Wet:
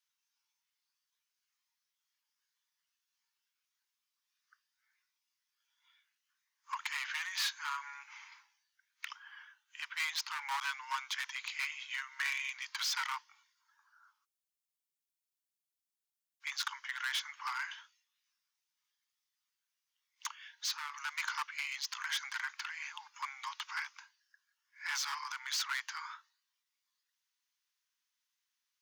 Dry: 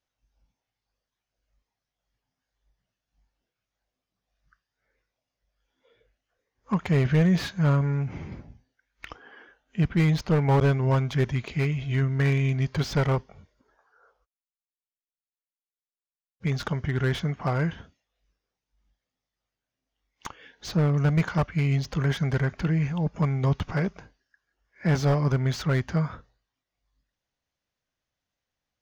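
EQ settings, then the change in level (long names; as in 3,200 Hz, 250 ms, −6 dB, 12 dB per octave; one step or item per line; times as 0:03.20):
Butterworth high-pass 890 Hz 96 dB per octave
high-shelf EQ 2,400 Hz +11.5 dB
−6.5 dB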